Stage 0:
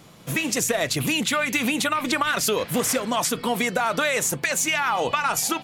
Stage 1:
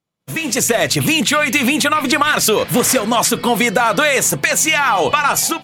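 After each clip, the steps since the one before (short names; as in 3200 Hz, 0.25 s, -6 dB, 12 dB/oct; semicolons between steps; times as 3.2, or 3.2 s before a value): AGC gain up to 11.5 dB; expander -29 dBFS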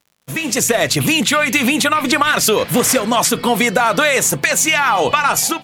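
crackle 92/s -40 dBFS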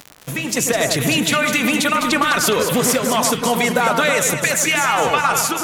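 upward compressor, threshold -19 dBFS; on a send: echo with dull and thin repeats by turns 0.103 s, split 1600 Hz, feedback 69%, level -4 dB; on the sum: gain -3.5 dB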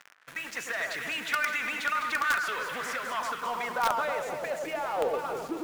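band-pass sweep 1600 Hz -> 370 Hz, 3.08–5.58; in parallel at -9 dB: companded quantiser 2-bit; on the sum: gain -7.5 dB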